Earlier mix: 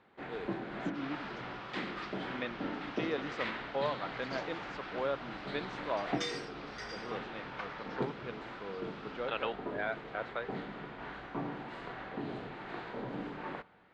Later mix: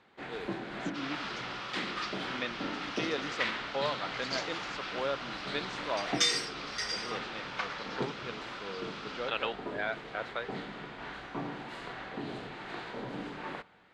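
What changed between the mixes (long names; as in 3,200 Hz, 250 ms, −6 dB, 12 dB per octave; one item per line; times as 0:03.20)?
second sound +5.0 dB
master: remove low-pass filter 1,800 Hz 6 dB per octave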